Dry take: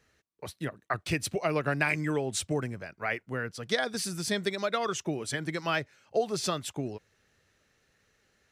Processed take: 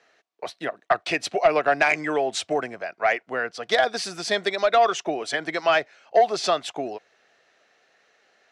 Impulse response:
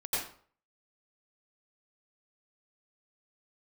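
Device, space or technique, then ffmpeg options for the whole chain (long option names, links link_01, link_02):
intercom: -af "highpass=420,lowpass=4900,equalizer=frequency=700:width_type=o:width=0.27:gain=11,asoftclip=type=tanh:threshold=-17dB,volume=8.5dB"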